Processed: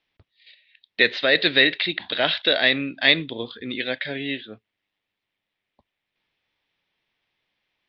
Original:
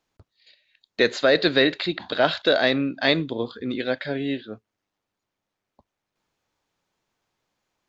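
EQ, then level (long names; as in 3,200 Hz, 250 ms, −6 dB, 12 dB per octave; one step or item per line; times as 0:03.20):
Butterworth low-pass 5,700 Hz 72 dB per octave
flat-topped bell 2,600 Hz +11 dB 1.3 octaves
−4.0 dB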